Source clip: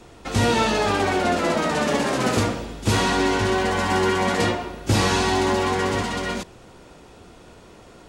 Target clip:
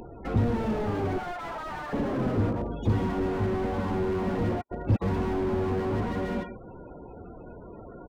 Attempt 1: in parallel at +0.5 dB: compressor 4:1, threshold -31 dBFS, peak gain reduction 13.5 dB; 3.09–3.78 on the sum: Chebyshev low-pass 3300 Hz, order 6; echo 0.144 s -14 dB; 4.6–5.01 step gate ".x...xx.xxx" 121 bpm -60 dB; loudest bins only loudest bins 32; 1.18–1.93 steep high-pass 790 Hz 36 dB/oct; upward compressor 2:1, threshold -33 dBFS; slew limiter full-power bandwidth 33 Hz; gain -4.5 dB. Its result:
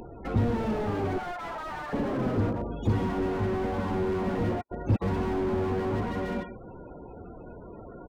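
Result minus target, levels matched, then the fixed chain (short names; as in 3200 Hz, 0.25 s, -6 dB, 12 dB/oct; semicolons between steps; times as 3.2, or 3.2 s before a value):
compressor: peak gain reduction +5 dB
in parallel at +0.5 dB: compressor 4:1, threshold -24.5 dBFS, peak gain reduction 8.5 dB; 3.09–3.78 on the sum: Chebyshev low-pass 3300 Hz, order 6; echo 0.144 s -14 dB; 4.6–5.01 step gate ".x...xx.xxx" 121 bpm -60 dB; loudest bins only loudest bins 32; 1.18–1.93 steep high-pass 790 Hz 36 dB/oct; upward compressor 2:1, threshold -33 dBFS; slew limiter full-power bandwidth 33 Hz; gain -4.5 dB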